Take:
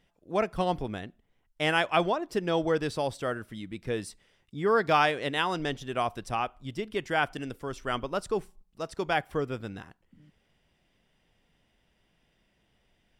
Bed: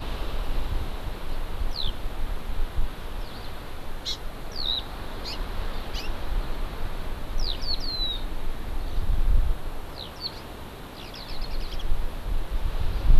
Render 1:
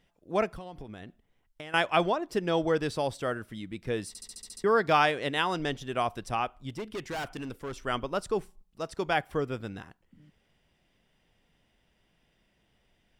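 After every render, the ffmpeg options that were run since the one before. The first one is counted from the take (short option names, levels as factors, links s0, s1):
-filter_complex "[0:a]asettb=1/sr,asplit=3[s0][s1][s2];[s0]atrim=end=0.494[s3];[s1]atrim=start=0.49:end=1.74,asetpts=PTS-STARTPTS,afade=t=in:d=0.004:c=qsin,afade=t=out:st=1.246:d=0.004:c=qsin,acompressor=threshold=0.0126:ratio=10:attack=3.2:release=140:knee=1:detection=peak[s4];[s2]atrim=start=1.736[s5];[s3][s4]acrossfade=d=0.004:c1=hsin:c2=qsin[s6];[s6][s5]acrossfade=d=0.004:c1=qsin:c2=hsin,asettb=1/sr,asplit=3[s7][s8][s9];[s7]atrim=end=6.694[s10];[s8]atrim=start=6.69:end=7.8,asetpts=PTS-STARTPTS,afade=t=in:d=0.004:c=qsin,afade=t=out:st=1.106:d=0.004:c=qsin,volume=39.8,asoftclip=hard,volume=0.0251[s11];[s9]atrim=start=7.796[s12];[s10][s11]acrossfade=d=0.004:c1=hsin:c2=qsin[s13];[s13][s12]acrossfade=d=0.004:c1=qsin:c2=hsin,asplit=9[s14][s15][s16][s17][s18][s19][s20][s21][s22];[s14]atrim=end=4.152[s23];[s15]atrim=start=4.078:end=4.152[s24];[s16]atrim=start=4.078:end=4.152[s25];[s17]atrim=start=4.078:end=4.152[s26];[s18]atrim=start=4.078:end=4.152[s27];[s19]atrim=start=4.078:end=4.152[s28];[s20]atrim=start=4.078:end=4.152[s29];[s21]atrim=start=4.078:end=4.152[s30];[s22]atrim=start=4.638[s31];[s23][s24]acrossfade=d=0.004:c1=hsin:c2=hsin[s32];[s32][s25]acrossfade=d=0.004:c1=hsin:c2=hsin[s33];[s33][s26]acrossfade=d=0.004:c1=hsin:c2=hsin[s34];[s34][s27]acrossfade=d=0.004:c1=hsin:c2=hsin[s35];[s35][s28]acrossfade=d=0.004:c1=hsin:c2=hsin[s36];[s36][s29]acrossfade=d=0.004:c1=hsin:c2=hsin[s37];[s37][s30]acrossfade=d=0.004:c1=hsin:c2=hsin[s38];[s38][s31]acrossfade=d=0.004:c1=hsin:c2=hsin"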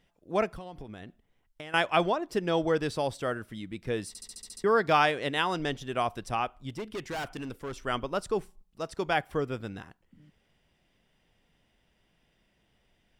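-af anull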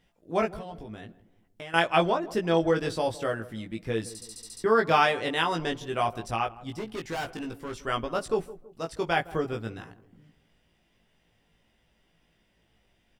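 -filter_complex "[0:a]asplit=2[s0][s1];[s1]adelay=18,volume=0.708[s2];[s0][s2]amix=inputs=2:normalize=0,asplit=2[s3][s4];[s4]adelay=163,lowpass=f=830:p=1,volume=0.158,asplit=2[s5][s6];[s6]adelay=163,lowpass=f=830:p=1,volume=0.48,asplit=2[s7][s8];[s8]adelay=163,lowpass=f=830:p=1,volume=0.48,asplit=2[s9][s10];[s10]adelay=163,lowpass=f=830:p=1,volume=0.48[s11];[s3][s5][s7][s9][s11]amix=inputs=5:normalize=0"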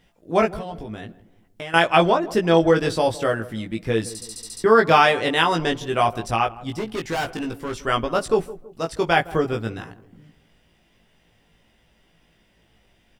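-af "volume=2.37,alimiter=limit=0.708:level=0:latency=1"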